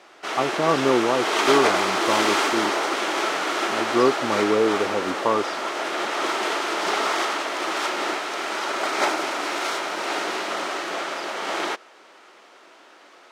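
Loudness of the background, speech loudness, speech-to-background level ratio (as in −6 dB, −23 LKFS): −24.5 LKFS, −24.0 LKFS, 0.5 dB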